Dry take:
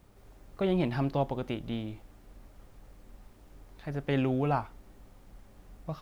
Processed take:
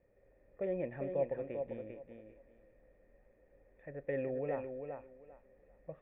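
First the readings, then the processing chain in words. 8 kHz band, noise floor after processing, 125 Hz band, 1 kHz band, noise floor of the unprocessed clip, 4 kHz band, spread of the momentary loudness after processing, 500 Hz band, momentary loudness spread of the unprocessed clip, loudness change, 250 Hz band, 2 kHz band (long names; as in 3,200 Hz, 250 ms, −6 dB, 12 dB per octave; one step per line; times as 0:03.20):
can't be measured, −69 dBFS, −16.0 dB, −14.5 dB, −56 dBFS, below −25 dB, 19 LU, −3.0 dB, 17 LU, −8.5 dB, −13.0 dB, −9.0 dB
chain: formant resonators in series e
high-frequency loss of the air 150 metres
feedback echo with a high-pass in the loop 396 ms, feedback 21%, high-pass 150 Hz, level −5.5 dB
level +3.5 dB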